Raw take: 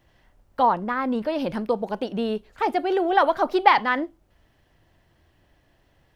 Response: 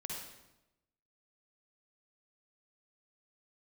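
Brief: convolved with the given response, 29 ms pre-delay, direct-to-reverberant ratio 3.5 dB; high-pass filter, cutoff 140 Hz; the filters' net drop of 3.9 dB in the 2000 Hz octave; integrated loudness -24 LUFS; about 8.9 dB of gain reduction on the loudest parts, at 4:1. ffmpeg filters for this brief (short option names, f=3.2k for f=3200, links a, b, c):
-filter_complex "[0:a]highpass=140,equalizer=f=2k:t=o:g=-5,acompressor=threshold=-21dB:ratio=4,asplit=2[a][b];[1:a]atrim=start_sample=2205,adelay=29[c];[b][c]afir=irnorm=-1:irlink=0,volume=-3dB[d];[a][d]amix=inputs=2:normalize=0,volume=1.5dB"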